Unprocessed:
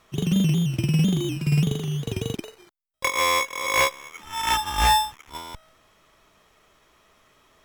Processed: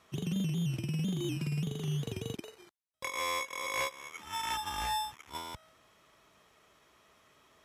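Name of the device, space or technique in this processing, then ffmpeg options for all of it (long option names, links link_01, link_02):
podcast mastering chain: -af "highpass=67,acompressor=threshold=-24dB:ratio=3,alimiter=limit=-21dB:level=0:latency=1:release=203,volume=-4dB" -ar 32000 -c:a libmp3lame -b:a 128k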